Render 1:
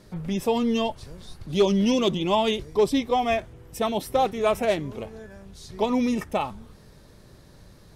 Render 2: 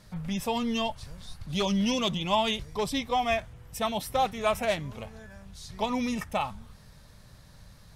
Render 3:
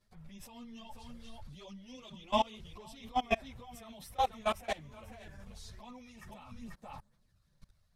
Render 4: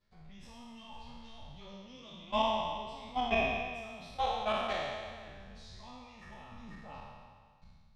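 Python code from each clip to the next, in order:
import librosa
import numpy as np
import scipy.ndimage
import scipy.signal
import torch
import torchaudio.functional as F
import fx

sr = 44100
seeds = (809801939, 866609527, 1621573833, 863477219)

y1 = fx.peak_eq(x, sr, hz=360.0, db=-14.5, octaves=1.0)
y2 = y1 + 10.0 ** (-12.5 / 20.0) * np.pad(y1, (int(488 * sr / 1000.0), 0))[:len(y1)]
y2 = fx.level_steps(y2, sr, step_db=24)
y2 = fx.chorus_voices(y2, sr, voices=6, hz=1.2, base_ms=11, depth_ms=3.0, mix_pct=65)
y3 = fx.spec_trails(y2, sr, decay_s=1.76)
y3 = scipy.signal.sosfilt(scipy.signal.cheby1(2, 1.0, 4200.0, 'lowpass', fs=sr, output='sos'), y3)
y3 = fx.room_flutter(y3, sr, wall_m=9.6, rt60_s=0.29)
y3 = y3 * 10.0 ** (-3.5 / 20.0)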